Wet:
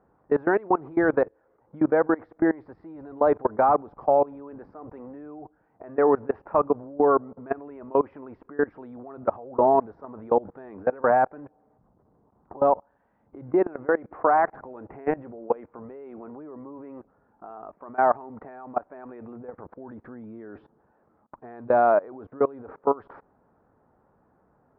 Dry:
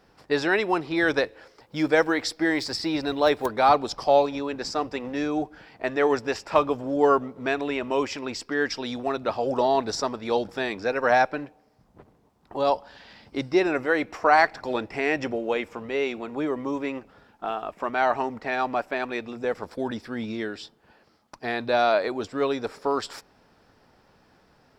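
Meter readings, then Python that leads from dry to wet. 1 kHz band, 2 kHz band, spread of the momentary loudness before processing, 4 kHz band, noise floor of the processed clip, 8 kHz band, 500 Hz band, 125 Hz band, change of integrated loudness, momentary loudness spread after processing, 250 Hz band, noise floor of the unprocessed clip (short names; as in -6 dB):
-0.5 dB, -8.0 dB, 11 LU, under -35 dB, -66 dBFS, under -35 dB, +0.5 dB, -2.5 dB, +1.0 dB, 21 LU, -1.5 dB, -61 dBFS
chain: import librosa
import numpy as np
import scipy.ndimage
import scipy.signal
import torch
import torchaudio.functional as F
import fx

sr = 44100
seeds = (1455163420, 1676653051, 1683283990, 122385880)

y = fx.highpass(x, sr, hz=41.0, slope=6)
y = fx.level_steps(y, sr, step_db=23)
y = scipy.signal.sosfilt(scipy.signal.butter(4, 1300.0, 'lowpass', fs=sr, output='sos'), y)
y = y * librosa.db_to_amplitude(5.5)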